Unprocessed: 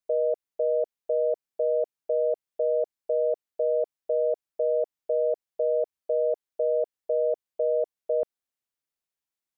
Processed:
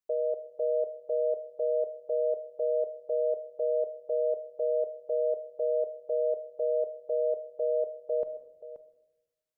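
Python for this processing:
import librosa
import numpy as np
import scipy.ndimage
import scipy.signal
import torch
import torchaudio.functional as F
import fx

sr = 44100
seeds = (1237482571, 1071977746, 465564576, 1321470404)

y = x + 10.0 ** (-13.5 / 20.0) * np.pad(x, (int(529 * sr / 1000.0), 0))[:len(x)]
y = fx.room_shoebox(y, sr, seeds[0], volume_m3=380.0, walls='mixed', distance_m=0.35)
y = F.gain(torch.from_numpy(y), -4.5).numpy()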